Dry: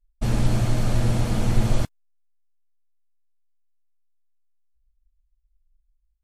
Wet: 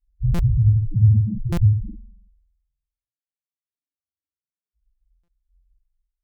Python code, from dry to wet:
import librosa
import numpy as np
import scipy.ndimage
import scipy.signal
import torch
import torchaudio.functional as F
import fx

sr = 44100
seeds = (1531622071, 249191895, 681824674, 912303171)

y = scipy.signal.sosfilt(scipy.signal.butter(2, 47.0, 'highpass', fs=sr, output='sos'), x)
y = fx.spacing_loss(y, sr, db_at_10k=42)
y = fx.fixed_phaser(y, sr, hz=2600.0, stages=4)
y = fx.rev_spring(y, sr, rt60_s=1.1, pass_ms=(47,), chirp_ms=60, drr_db=-5.5)
y = fx.dereverb_blind(y, sr, rt60_s=1.2)
y = fx.dynamic_eq(y, sr, hz=100.0, q=2.4, threshold_db=-36.0, ratio=4.0, max_db=4)
y = fx.spec_topn(y, sr, count=2)
y = fx.buffer_glitch(y, sr, at_s=(0.34, 1.52, 5.23), block=256, repeats=8)
y = fx.end_taper(y, sr, db_per_s=100.0)
y = F.gain(torch.from_numpy(y), 8.0).numpy()